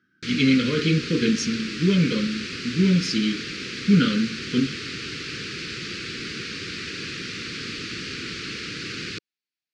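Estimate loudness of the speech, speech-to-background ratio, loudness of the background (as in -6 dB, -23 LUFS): -22.5 LUFS, 8.5 dB, -31.0 LUFS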